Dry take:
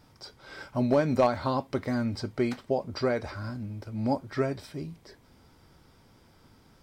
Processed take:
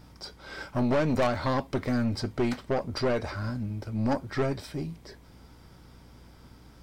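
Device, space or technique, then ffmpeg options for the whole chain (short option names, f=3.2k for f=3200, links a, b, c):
valve amplifier with mains hum: -af "aeval=exprs='(tanh(20*val(0)+0.4)-tanh(0.4))/20':c=same,aeval=exprs='val(0)+0.00126*(sin(2*PI*60*n/s)+sin(2*PI*2*60*n/s)/2+sin(2*PI*3*60*n/s)/3+sin(2*PI*4*60*n/s)/4+sin(2*PI*5*60*n/s)/5)':c=same,volume=5dB"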